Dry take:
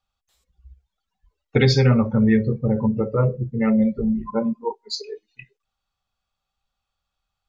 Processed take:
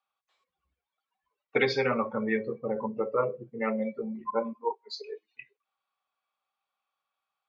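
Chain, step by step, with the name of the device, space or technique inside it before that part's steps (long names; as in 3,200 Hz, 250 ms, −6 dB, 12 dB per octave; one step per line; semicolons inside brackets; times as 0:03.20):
tin-can telephone (band-pass filter 460–2,900 Hz; hollow resonant body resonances 1,100/2,300 Hz, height 10 dB)
level −2 dB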